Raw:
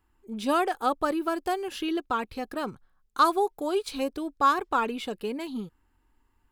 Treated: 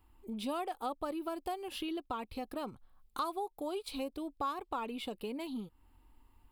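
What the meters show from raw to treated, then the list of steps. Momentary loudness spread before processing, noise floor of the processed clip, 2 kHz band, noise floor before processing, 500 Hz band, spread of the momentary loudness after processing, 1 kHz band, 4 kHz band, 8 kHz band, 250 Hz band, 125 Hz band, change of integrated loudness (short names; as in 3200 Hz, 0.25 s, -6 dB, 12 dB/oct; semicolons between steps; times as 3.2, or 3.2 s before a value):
12 LU, -69 dBFS, -15.0 dB, -70 dBFS, -10.5 dB, 5 LU, -12.5 dB, -8.0 dB, -9.5 dB, -9.0 dB, n/a, -11.5 dB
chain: fifteen-band EQ 160 Hz -6 dB, 400 Hz -5 dB, 1600 Hz -11 dB, 6300 Hz -10 dB; compressor 2.5:1, threshold -48 dBFS, peak gain reduction 18 dB; gain +6 dB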